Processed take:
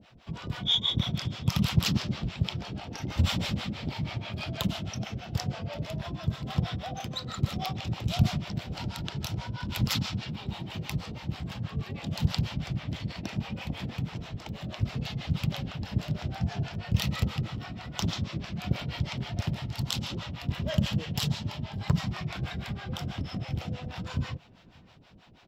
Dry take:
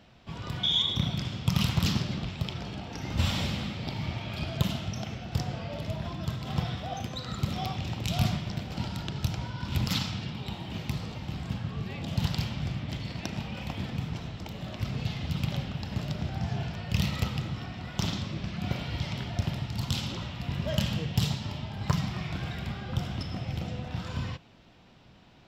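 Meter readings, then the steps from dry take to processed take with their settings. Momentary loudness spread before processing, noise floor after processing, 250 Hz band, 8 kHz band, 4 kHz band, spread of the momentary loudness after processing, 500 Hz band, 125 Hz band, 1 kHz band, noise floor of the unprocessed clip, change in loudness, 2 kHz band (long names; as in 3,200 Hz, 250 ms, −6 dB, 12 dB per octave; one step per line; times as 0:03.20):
8 LU, −53 dBFS, +0.5 dB, +1.0 dB, 0.0 dB, 9 LU, −1.0 dB, +0.5 dB, −0.5 dB, −55 dBFS, 0.0 dB, 0.0 dB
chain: two-band tremolo in antiphase 6.2 Hz, depth 100%, crossover 510 Hz
slap from a distant wall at 100 metres, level −28 dB
level +4.5 dB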